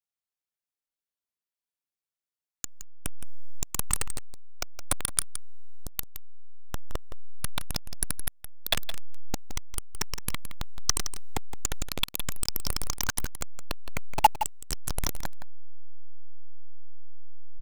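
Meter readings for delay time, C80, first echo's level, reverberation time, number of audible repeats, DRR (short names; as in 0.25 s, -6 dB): 0.167 s, none, -11.5 dB, none, 1, none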